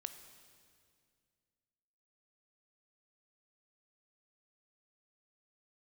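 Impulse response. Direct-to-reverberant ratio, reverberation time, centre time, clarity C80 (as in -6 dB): 8.5 dB, 2.2 s, 21 ms, 10.5 dB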